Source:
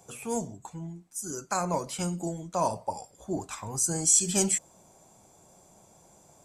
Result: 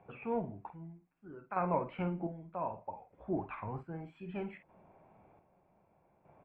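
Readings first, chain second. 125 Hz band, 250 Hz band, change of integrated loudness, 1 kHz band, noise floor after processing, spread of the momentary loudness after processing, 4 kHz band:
-6.5 dB, -6.5 dB, -11.0 dB, -5.5 dB, -71 dBFS, 17 LU, under -25 dB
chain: elliptic low-pass 2500 Hz, stop band 60 dB; chopper 0.64 Hz, depth 60%, duty 45%; doubler 49 ms -10.5 dB; gain -2.5 dB

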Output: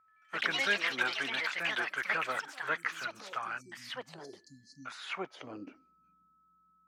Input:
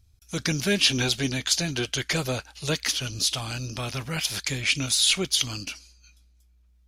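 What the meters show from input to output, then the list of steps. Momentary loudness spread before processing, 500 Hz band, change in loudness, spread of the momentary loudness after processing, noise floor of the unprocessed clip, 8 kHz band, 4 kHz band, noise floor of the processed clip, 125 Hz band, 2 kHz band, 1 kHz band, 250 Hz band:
12 LU, -10.0 dB, -9.0 dB, 19 LU, -60 dBFS, -24.0 dB, -14.5 dB, -69 dBFS, -26.5 dB, -1.5 dB, +1.0 dB, -17.0 dB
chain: LPF 9600 Hz; band-pass sweep 1300 Hz -> 200 Hz, 5.03–5.94; HPF 150 Hz 12 dB/oct; resonant high shelf 2700 Hz -10 dB, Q 1.5; whine 1300 Hz -69 dBFS; spectral delete 3.61–4.86, 280–4000 Hz; echoes that change speed 82 ms, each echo +5 st, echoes 3; gain +3 dB

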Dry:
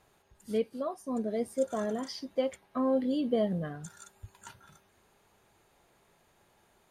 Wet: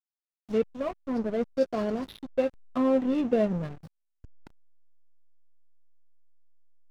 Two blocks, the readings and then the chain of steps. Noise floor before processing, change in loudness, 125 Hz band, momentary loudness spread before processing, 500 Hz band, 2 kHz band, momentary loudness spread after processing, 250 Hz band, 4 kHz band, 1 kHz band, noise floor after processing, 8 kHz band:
-68 dBFS, +3.5 dB, +3.0 dB, 22 LU, +3.5 dB, +4.5 dB, 9 LU, +4.0 dB, -2.5 dB, +2.0 dB, under -85 dBFS, n/a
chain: nonlinear frequency compression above 2100 Hz 1.5:1; backlash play -33 dBFS; gain +4.5 dB

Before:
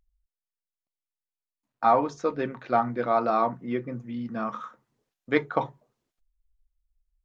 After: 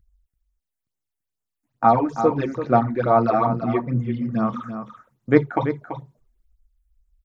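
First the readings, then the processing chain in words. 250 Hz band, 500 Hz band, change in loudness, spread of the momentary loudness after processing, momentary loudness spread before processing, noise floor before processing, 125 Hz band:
+9.0 dB, +6.0 dB, +6.0 dB, 14 LU, 12 LU, under -85 dBFS, +14.0 dB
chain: bell 96 Hz +11 dB 2.2 oct; phaser stages 8, 2.3 Hz, lowest notch 130–4400 Hz; echo 0.336 s -9.5 dB; gain +5.5 dB

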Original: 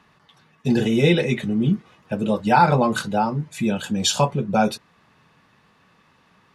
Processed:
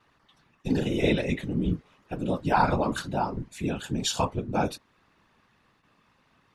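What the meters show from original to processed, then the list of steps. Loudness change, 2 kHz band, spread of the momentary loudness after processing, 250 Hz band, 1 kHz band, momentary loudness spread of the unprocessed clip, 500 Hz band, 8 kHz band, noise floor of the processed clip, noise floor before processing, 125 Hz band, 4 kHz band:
-7.0 dB, -7.0 dB, 10 LU, -7.5 dB, -7.5 dB, 9 LU, -7.0 dB, -7.5 dB, -67 dBFS, -59 dBFS, -7.5 dB, -7.5 dB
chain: gate with hold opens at -49 dBFS; whisperiser; gain -7 dB

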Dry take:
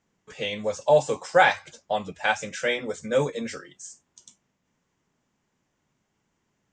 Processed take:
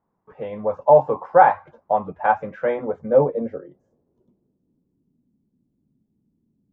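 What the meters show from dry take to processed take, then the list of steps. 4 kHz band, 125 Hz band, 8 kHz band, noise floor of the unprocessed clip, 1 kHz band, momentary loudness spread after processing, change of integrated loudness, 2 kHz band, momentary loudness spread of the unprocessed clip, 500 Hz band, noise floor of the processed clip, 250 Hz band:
under -20 dB, +3.5 dB, under -35 dB, -76 dBFS, +7.5 dB, 17 LU, +5.0 dB, -4.5 dB, 17 LU, +5.5 dB, -74 dBFS, +4.0 dB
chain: high shelf 3500 Hz -10.5 dB; AGC gain up to 6 dB; low-pass sweep 1000 Hz -> 250 Hz, 2.72–5.15; gain -2 dB

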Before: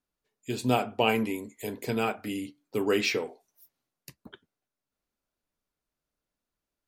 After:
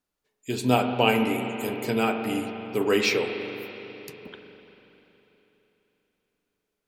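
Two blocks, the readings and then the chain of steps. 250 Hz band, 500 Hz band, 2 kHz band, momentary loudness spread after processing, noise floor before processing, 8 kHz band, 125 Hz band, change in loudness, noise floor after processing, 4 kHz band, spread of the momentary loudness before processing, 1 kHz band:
+4.5 dB, +4.5 dB, +4.5 dB, 20 LU, under -85 dBFS, +3.5 dB, +4.0 dB, +4.0 dB, -82 dBFS, +4.5 dB, 11 LU, +4.5 dB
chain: low shelf 120 Hz -5 dB; spring tank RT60 3.6 s, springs 40/47 ms, chirp 30 ms, DRR 5 dB; gain +3.5 dB

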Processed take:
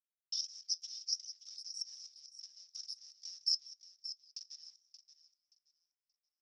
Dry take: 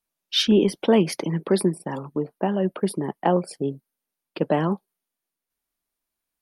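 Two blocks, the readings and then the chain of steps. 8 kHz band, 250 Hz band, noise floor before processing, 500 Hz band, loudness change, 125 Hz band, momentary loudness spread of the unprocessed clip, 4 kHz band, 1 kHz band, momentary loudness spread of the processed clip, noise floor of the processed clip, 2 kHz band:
-5.5 dB, under -40 dB, under -85 dBFS, under -40 dB, -16.0 dB, under -40 dB, 11 LU, -8.5 dB, under -40 dB, 17 LU, under -85 dBFS, under -40 dB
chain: zero-crossing step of -34.5 dBFS; gate with hold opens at -37 dBFS; reverb removal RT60 0.73 s; level quantiser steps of 20 dB; limiter -15.5 dBFS, peak gain reduction 7.5 dB; compressor 5:1, threshold -31 dBFS, peak gain reduction 10.5 dB; fuzz box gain 43 dB, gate -51 dBFS; flange 0.5 Hz, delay 2.7 ms, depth 4.3 ms, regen +77%; Butterworth band-pass 5400 Hz, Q 7.8; on a send: feedback echo 0.577 s, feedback 22%, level -12 dB; on the sum: warbling echo 0.183 s, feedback 34%, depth 94 cents, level -22 dB; gain -1 dB

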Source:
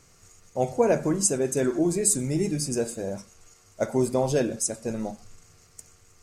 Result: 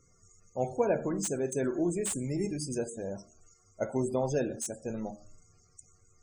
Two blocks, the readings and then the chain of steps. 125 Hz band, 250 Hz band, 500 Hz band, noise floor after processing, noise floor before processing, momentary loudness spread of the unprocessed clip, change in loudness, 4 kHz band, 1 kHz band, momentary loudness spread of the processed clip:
-6.5 dB, -6.0 dB, -6.0 dB, -65 dBFS, -58 dBFS, 11 LU, -7.0 dB, -9.0 dB, -6.0 dB, 10 LU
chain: de-hum 76.94 Hz, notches 11; loudest bins only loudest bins 64; slew limiter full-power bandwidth 420 Hz; gain -5.5 dB

